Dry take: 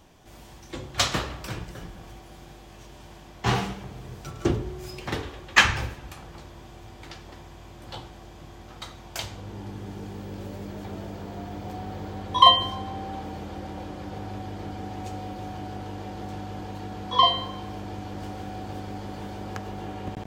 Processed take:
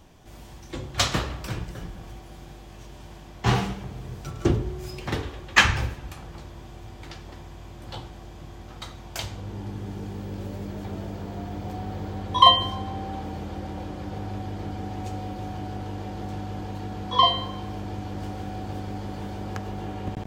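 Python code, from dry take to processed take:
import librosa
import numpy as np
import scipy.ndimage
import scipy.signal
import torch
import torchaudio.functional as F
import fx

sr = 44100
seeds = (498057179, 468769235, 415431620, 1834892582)

y = fx.low_shelf(x, sr, hz=210.0, db=5.0)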